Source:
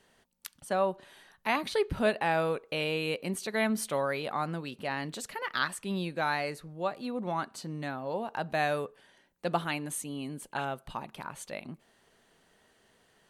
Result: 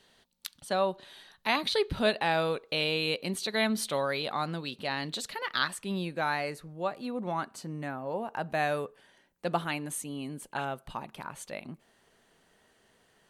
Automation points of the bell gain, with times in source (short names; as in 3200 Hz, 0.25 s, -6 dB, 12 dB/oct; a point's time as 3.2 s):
bell 3900 Hz 0.68 oct
5.3 s +10 dB
6.06 s -1 dB
7.41 s -1 dB
7.94 s -11.5 dB
8.77 s -0.5 dB